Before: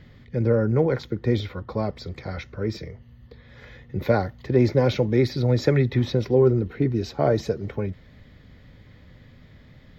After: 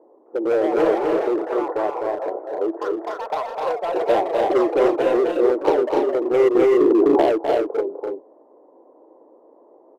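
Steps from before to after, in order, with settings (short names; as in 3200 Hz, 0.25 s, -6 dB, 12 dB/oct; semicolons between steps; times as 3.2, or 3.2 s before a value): Chebyshev band-pass 320–1000 Hz, order 4; dynamic EQ 480 Hz, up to -5 dB, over -31 dBFS, Q 1.4; in parallel at -5 dB: wavefolder -28 dBFS; on the sum: echoes that change speed 0.26 s, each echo +5 st, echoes 2, each echo -6 dB; on a send: loudspeakers at several distances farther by 87 m -4 dB, 99 m -5 dB; 6.55–7.22 on the sum: fast leveller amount 100%; gain +6 dB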